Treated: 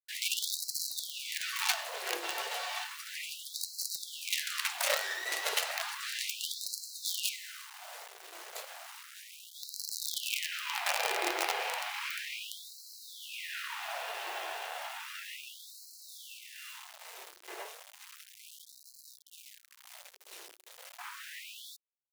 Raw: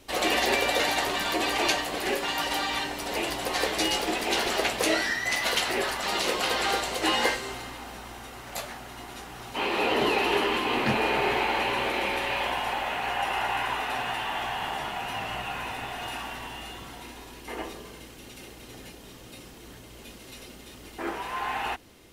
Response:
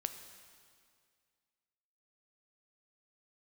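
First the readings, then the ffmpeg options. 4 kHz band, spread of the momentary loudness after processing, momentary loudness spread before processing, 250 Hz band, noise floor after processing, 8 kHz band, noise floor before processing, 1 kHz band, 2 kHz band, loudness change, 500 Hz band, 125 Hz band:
−7.0 dB, 19 LU, 20 LU, −23.5 dB, −59 dBFS, −1.5 dB, −47 dBFS, −13.0 dB, −9.0 dB, −8.5 dB, −15.0 dB, below −40 dB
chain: -af "afreqshift=-57,acrusher=bits=4:dc=4:mix=0:aa=0.000001,afftfilt=real='re*gte(b*sr/1024,330*pow(4000/330,0.5+0.5*sin(2*PI*0.33*pts/sr)))':imag='im*gte(b*sr/1024,330*pow(4000/330,0.5+0.5*sin(2*PI*0.33*pts/sr)))':win_size=1024:overlap=0.75,volume=-3.5dB"

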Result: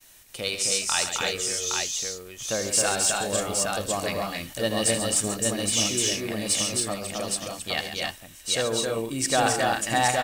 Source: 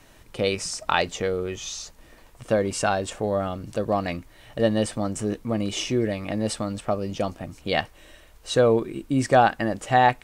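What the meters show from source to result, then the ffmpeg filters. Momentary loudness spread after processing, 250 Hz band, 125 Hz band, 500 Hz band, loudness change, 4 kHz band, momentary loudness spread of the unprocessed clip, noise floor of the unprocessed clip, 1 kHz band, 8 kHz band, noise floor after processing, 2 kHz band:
8 LU, −5.5 dB, −6.0 dB, −4.5 dB, 0.0 dB, +6.5 dB, 13 LU, −52 dBFS, −4.0 dB, +12.5 dB, −48 dBFS, +0.5 dB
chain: -filter_complex "[0:a]crystalizer=i=9:c=0,dynaudnorm=framelen=670:gausssize=3:maxgain=11.5dB,asoftclip=type=tanh:threshold=-4dB,agate=range=-33dB:threshold=-40dB:ratio=3:detection=peak,asplit=2[link_01][link_02];[link_02]aecho=0:1:79|136|265|300|817:0.266|0.316|0.708|0.473|0.668[link_03];[link_01][link_03]amix=inputs=2:normalize=0,volume=-7.5dB"

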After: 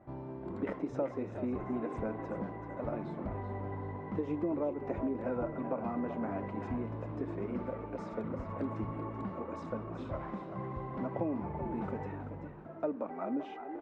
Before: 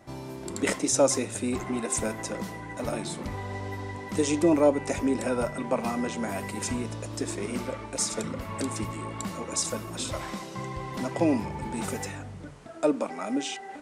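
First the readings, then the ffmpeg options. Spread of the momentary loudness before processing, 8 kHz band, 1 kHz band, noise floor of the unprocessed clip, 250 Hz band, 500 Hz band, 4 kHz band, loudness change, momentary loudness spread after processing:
12 LU, below −40 dB, −7.0 dB, −41 dBFS, −7.0 dB, −8.5 dB, below −25 dB, −8.5 dB, 6 LU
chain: -filter_complex "[0:a]lowpass=1300,aemphasis=mode=reproduction:type=50fm,acompressor=threshold=-26dB:ratio=6,asplit=5[link_01][link_02][link_03][link_04][link_05];[link_02]adelay=384,afreqshift=57,volume=-10dB[link_06];[link_03]adelay=768,afreqshift=114,volume=-19.1dB[link_07];[link_04]adelay=1152,afreqshift=171,volume=-28.2dB[link_08];[link_05]adelay=1536,afreqshift=228,volume=-37.4dB[link_09];[link_01][link_06][link_07][link_08][link_09]amix=inputs=5:normalize=0,volume=-4.5dB"

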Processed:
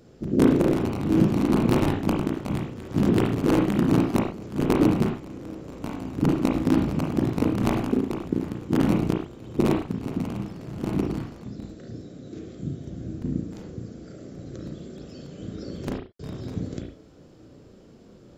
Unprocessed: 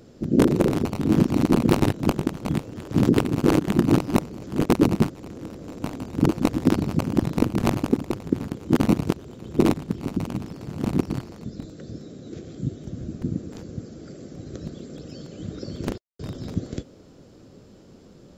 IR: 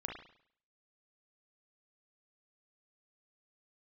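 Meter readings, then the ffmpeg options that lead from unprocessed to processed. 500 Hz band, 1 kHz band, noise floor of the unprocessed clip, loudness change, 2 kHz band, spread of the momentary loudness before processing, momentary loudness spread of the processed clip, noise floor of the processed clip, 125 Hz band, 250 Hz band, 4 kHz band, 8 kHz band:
−1.0 dB, −1.0 dB, −50 dBFS, −1.0 dB, −1.0 dB, 18 LU, 18 LU, −50 dBFS, −1.5 dB, −1.0 dB, −2.5 dB, −4.5 dB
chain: -filter_complex "[1:a]atrim=start_sample=2205,atrim=end_sample=6615[link_01];[0:a][link_01]afir=irnorm=-1:irlink=0,volume=-1dB"

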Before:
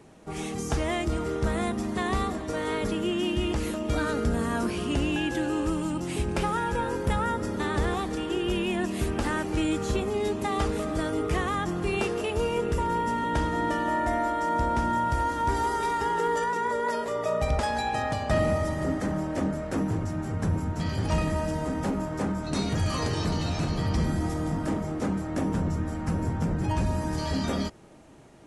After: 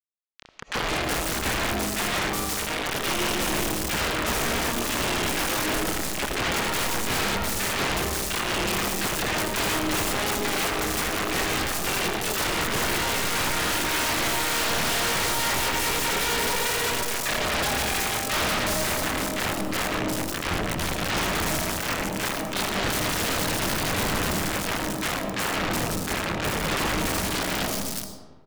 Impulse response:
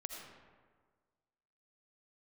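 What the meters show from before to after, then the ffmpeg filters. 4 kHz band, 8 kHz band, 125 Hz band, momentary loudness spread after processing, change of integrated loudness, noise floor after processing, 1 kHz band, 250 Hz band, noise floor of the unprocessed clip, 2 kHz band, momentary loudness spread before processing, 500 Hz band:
+12.0 dB, +14.5 dB, −4.0 dB, 4 LU, +3.5 dB, −31 dBFS, +0.5 dB, −2.5 dB, −34 dBFS, +8.5 dB, 3 LU, −0.5 dB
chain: -filter_complex "[0:a]acrusher=bits=3:mix=0:aa=0.000001,acrossover=split=1400|4600[link_01][link_02][link_03];[link_01]adelay=30[link_04];[link_03]adelay=370[link_05];[link_04][link_02][link_05]amix=inputs=3:normalize=0,asplit=2[link_06][link_07];[1:a]atrim=start_sample=2205[link_08];[link_07][link_08]afir=irnorm=-1:irlink=0,volume=3dB[link_09];[link_06][link_09]amix=inputs=2:normalize=0,aeval=exprs='0.0891*(abs(mod(val(0)/0.0891+3,4)-2)-1)':channel_layout=same,volume=1.5dB"

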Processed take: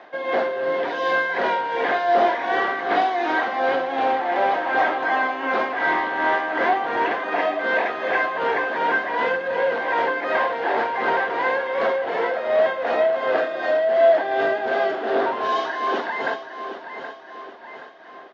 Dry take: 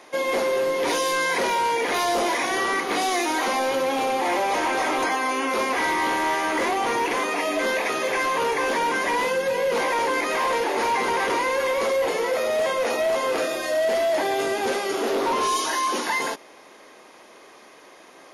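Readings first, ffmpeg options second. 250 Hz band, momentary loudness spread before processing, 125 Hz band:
−2.0 dB, 2 LU, can't be measured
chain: -af "highpass=100,equalizer=frequency=700:width_type=q:width=4:gain=10,equalizer=frequency=1600:width_type=q:width=4:gain=9,equalizer=frequency=2400:width_type=q:width=4:gain=-5,lowpass=frequency=3600:width=0.5412,lowpass=frequency=3600:width=1.3066,aecho=1:1:774|1548|2322|3096|3870:0.299|0.143|0.0688|0.033|0.0158,tremolo=f=2.7:d=0.54"

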